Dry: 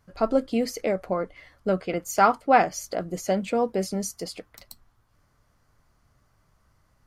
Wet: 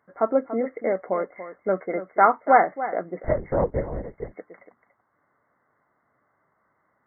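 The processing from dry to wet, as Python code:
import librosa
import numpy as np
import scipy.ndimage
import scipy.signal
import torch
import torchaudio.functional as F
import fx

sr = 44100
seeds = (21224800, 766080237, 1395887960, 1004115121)

y = scipy.signal.sosfilt(scipy.signal.butter(2, 300.0, 'highpass', fs=sr, output='sos'), x)
y = y + 10.0 ** (-12.5 / 20.0) * np.pad(y, (int(286 * sr / 1000.0), 0))[:len(y)]
y = fx.lpc_vocoder(y, sr, seeds[0], excitation='whisper', order=10, at=(3.24, 4.34))
y = fx.brickwall_lowpass(y, sr, high_hz=2200.0)
y = y * 10.0 ** (2.0 / 20.0)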